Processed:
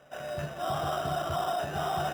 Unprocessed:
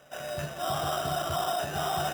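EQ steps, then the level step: high shelf 3300 Hz -9 dB; 0.0 dB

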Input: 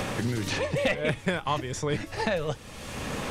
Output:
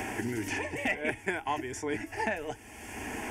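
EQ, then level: HPF 94 Hz 6 dB/oct; fixed phaser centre 800 Hz, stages 8; 0.0 dB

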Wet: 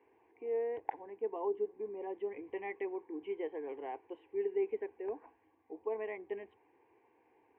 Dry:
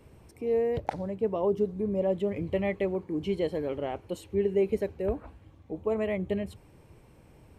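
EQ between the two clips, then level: BPF 490–2800 Hz; air absorption 470 m; fixed phaser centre 880 Hz, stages 8; -1.0 dB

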